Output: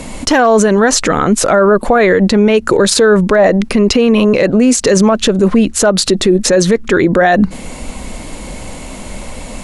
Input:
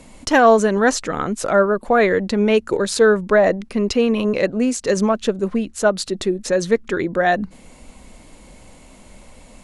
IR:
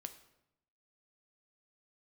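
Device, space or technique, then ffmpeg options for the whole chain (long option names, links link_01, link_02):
loud club master: -af "acompressor=threshold=-17dB:ratio=2,asoftclip=type=hard:threshold=-8.5dB,alimiter=level_in=18.5dB:limit=-1dB:release=50:level=0:latency=1,volume=-1dB"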